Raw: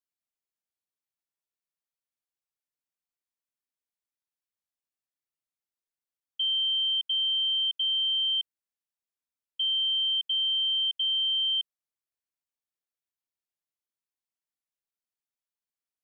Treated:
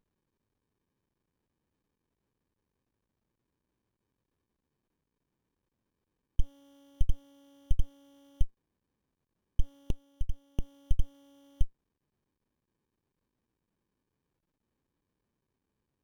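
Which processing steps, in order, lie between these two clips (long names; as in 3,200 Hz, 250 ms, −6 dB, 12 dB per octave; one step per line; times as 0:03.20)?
0:09.90–0:10.59: Butterworth low-pass 3,000 Hz 72 dB per octave
windowed peak hold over 65 samples
level +13.5 dB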